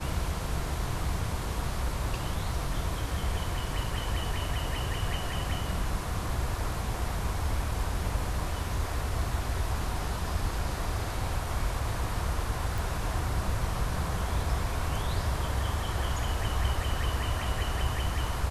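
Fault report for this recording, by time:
0:12.78: click

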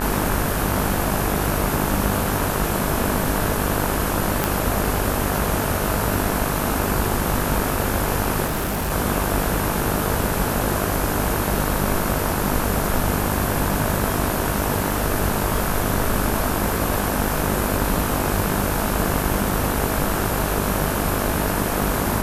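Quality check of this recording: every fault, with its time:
mains buzz 50 Hz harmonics 35 −26 dBFS
0:04.44: click
0:08.46–0:08.92: clipping −20 dBFS

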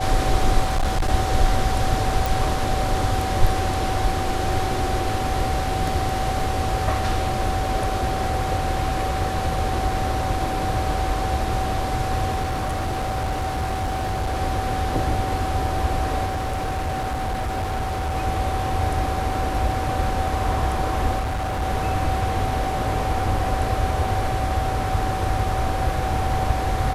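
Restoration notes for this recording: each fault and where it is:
whistle 760 Hz −26 dBFS
0:00.61–0:01.10: clipping −16.5 dBFS
0:02.26: click
0:12.42–0:14.36: clipping −20.5 dBFS
0:16.25–0:18.17: clipping −21.5 dBFS
0:21.19–0:21.63: clipping −22 dBFS

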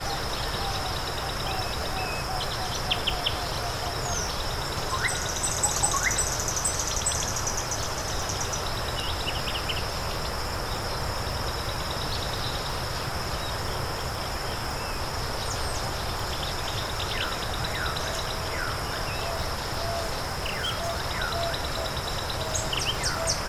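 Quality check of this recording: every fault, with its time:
surface crackle 24 per second −32 dBFS
0:20.25–0:21.00: clipping −24.5 dBFS

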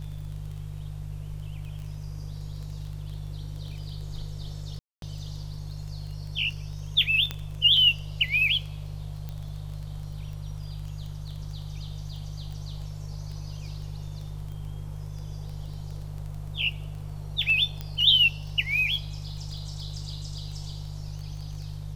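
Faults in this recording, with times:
surface crackle 11 per second −35 dBFS
mains hum 50 Hz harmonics 3 −36 dBFS
0:04.79–0:05.02: drop-out 232 ms
0:07.31: click −15 dBFS
0:09.29: click −24 dBFS
0:17.81: click −20 dBFS

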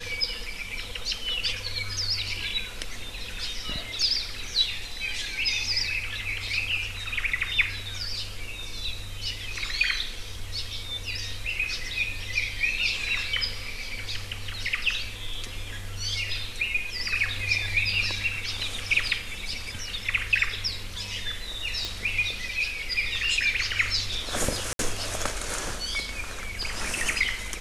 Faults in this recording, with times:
0:21.85: click
0:24.73–0:24.79: drop-out 62 ms

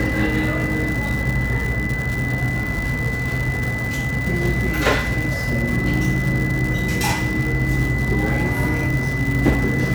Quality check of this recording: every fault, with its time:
surface crackle 220 per second −23 dBFS
whistle 2,000 Hz −25 dBFS

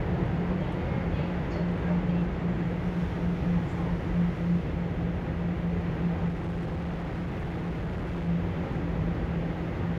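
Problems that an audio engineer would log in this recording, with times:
0:06.28–0:08.29: clipping −28.5 dBFS

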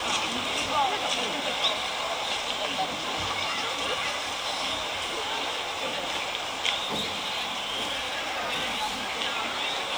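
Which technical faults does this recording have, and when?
0:06.83–0:09.12: clipping −25 dBFS

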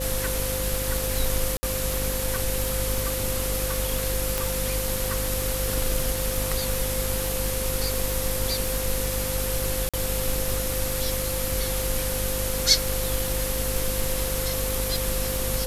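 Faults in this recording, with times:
mains buzz 50 Hz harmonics 11 −31 dBFS
surface crackle 590 per second −32 dBFS
whistle 520 Hz −31 dBFS
0:01.57–0:01.63: drop-out 60 ms
0:04.38: click
0:09.89–0:09.94: drop-out 46 ms

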